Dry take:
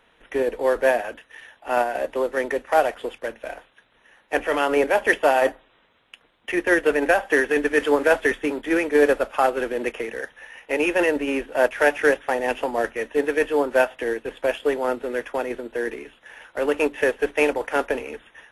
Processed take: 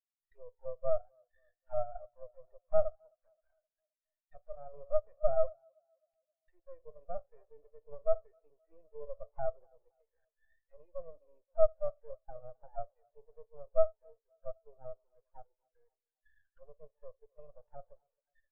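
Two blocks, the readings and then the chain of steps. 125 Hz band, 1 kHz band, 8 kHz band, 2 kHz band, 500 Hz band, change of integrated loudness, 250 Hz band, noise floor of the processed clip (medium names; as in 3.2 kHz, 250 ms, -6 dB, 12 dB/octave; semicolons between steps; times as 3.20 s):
no reading, -22.0 dB, under -40 dB, under -40 dB, -15.5 dB, -14.0 dB, under -40 dB, under -85 dBFS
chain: rattle on loud lows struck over -29 dBFS, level -13 dBFS; treble shelf 2.4 kHz +10.5 dB; in parallel at -1.5 dB: compression, threshold -27 dBFS, peak gain reduction 16.5 dB; on the sum: Schroeder reverb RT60 0.98 s, combs from 30 ms, DRR 15 dB; saturation -9 dBFS, distortion -15 dB; auto-wah 640–2100 Hz, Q 5.1, down, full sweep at -16.5 dBFS; half-wave rectifier; on a send: tape echo 263 ms, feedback 69%, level -13 dB, low-pass 4.2 kHz; on the sum: spectral contrast expander 2.5:1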